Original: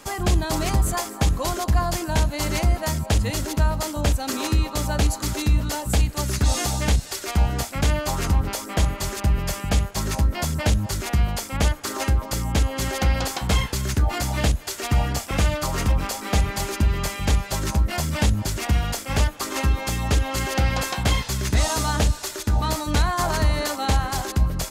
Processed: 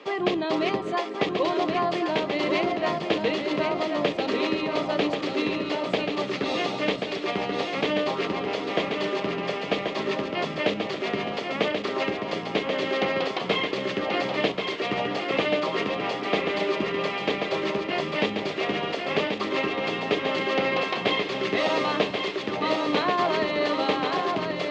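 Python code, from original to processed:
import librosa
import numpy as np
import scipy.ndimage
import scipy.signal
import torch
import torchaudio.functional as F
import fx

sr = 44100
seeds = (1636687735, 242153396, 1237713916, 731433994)

p1 = fx.cabinet(x, sr, low_hz=230.0, low_slope=24, high_hz=3400.0, hz=(240.0, 420.0, 860.0, 1500.0), db=(-7, 5, -8, -10))
p2 = p1 + fx.echo_feedback(p1, sr, ms=1084, feedback_pct=46, wet_db=-5, dry=0)
y = p2 * librosa.db_to_amplitude(3.5)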